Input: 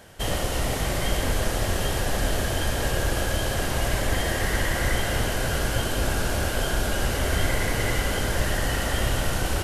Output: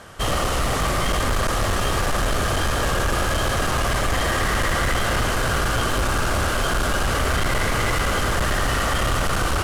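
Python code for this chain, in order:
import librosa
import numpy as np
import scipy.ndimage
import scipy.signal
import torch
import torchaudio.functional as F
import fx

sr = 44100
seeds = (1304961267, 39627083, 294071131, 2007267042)

y = scipy.signal.sosfilt(scipy.signal.butter(2, 11000.0, 'lowpass', fs=sr, output='sos'), x)
y = fx.peak_eq(y, sr, hz=1200.0, db=13.0, octaves=0.34)
y = np.clip(y, -10.0 ** (-22.5 / 20.0), 10.0 ** (-22.5 / 20.0))
y = y * 10.0 ** (5.0 / 20.0)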